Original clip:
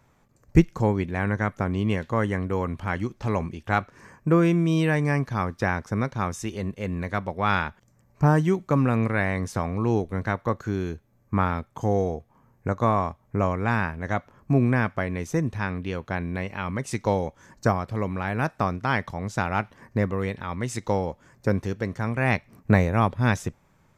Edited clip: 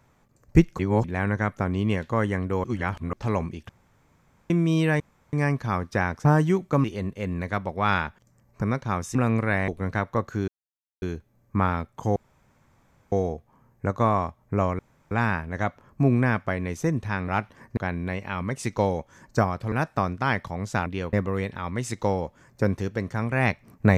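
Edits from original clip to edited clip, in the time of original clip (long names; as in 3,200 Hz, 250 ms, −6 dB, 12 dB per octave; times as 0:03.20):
0:00.79–0:01.04: reverse
0:02.64–0:03.13: reverse
0:03.69–0:04.50: fill with room tone
0:05.00: splice in room tone 0.33 s
0:05.92–0:06.45: swap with 0:08.23–0:08.82
0:09.35–0:10.00: remove
0:10.80: splice in silence 0.54 s
0:11.94: splice in room tone 0.96 s
0:13.61: splice in room tone 0.32 s
0:15.78–0:16.05: swap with 0:19.49–0:19.98
0:18.00–0:18.35: remove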